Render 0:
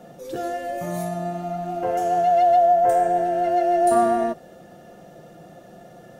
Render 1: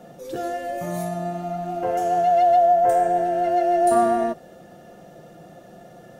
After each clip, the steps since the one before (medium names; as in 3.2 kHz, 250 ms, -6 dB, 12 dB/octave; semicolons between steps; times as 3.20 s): no audible change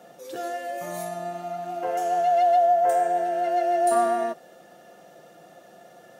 high-pass 680 Hz 6 dB/octave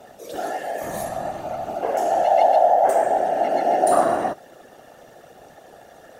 whisper effect; trim +3.5 dB